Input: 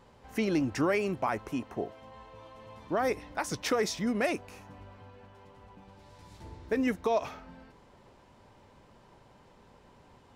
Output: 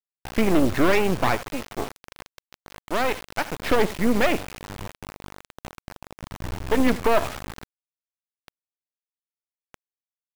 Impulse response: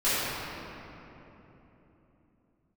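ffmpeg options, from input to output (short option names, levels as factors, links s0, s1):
-filter_complex "[0:a]lowpass=f=2600:w=0.5412,lowpass=f=2600:w=1.3066,equalizer=f=70:w=1.4:g=10.5,aeval=exprs='0.133*(cos(1*acos(clip(val(0)/0.133,-1,1)))-cos(1*PI/2))+0.0211*(cos(6*acos(clip(val(0)/0.133,-1,1)))-cos(6*PI/2))+0.00133*(cos(8*acos(clip(val(0)/0.133,-1,1)))-cos(8*PI/2))':c=same,asettb=1/sr,asplit=3[s0][s1][s2];[s0]atrim=end=1.354[s3];[s1]atrim=start=1.35:end=3.59,asetpts=PTS-STARTPTS,afade=t=in:d=0.004:c=qsin,afade=t=out:st=2.236:d=0.004:c=qsin,lowshelf=f=330:g=-11[s4];[s2]atrim=start=3.586[s5];[s3][s4]acrossfade=d=0.004:c1=hsin:c2=qsin[s6];[s6][s5]acrossfade=d=0.004:c1=qsin:c2=hsin,aeval=exprs='val(0)+0.002*(sin(2*PI*50*n/s)+sin(2*PI*2*50*n/s)/2+sin(2*PI*3*50*n/s)/3+sin(2*PI*4*50*n/s)/4+sin(2*PI*5*50*n/s)/5)':c=same,aecho=1:1:80:0.141,acrusher=bits=4:dc=4:mix=0:aa=0.000001,volume=2.82"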